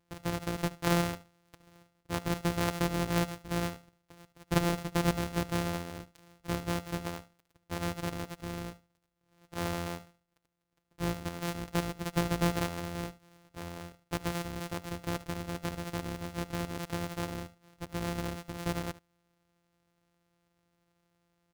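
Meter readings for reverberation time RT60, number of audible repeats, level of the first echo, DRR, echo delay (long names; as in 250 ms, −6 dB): no reverb audible, 1, −18.5 dB, no reverb audible, 74 ms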